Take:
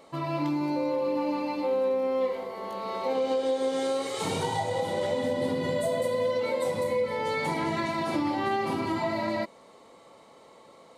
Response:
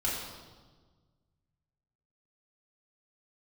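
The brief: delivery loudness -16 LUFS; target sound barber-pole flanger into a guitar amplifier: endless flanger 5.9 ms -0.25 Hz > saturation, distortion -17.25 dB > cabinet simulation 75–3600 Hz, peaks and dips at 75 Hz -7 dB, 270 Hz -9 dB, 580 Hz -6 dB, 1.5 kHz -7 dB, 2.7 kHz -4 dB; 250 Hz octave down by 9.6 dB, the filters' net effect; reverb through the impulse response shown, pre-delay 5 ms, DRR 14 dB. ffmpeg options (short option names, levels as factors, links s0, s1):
-filter_complex "[0:a]equalizer=f=250:t=o:g=-6.5,asplit=2[s0][s1];[1:a]atrim=start_sample=2205,adelay=5[s2];[s1][s2]afir=irnorm=-1:irlink=0,volume=0.0891[s3];[s0][s3]amix=inputs=2:normalize=0,asplit=2[s4][s5];[s5]adelay=5.9,afreqshift=-0.25[s6];[s4][s6]amix=inputs=2:normalize=1,asoftclip=threshold=0.0447,highpass=75,equalizer=f=75:t=q:w=4:g=-7,equalizer=f=270:t=q:w=4:g=-9,equalizer=f=580:t=q:w=4:g=-6,equalizer=f=1500:t=q:w=4:g=-7,equalizer=f=2700:t=q:w=4:g=-4,lowpass=f=3600:w=0.5412,lowpass=f=3600:w=1.3066,volume=12.6"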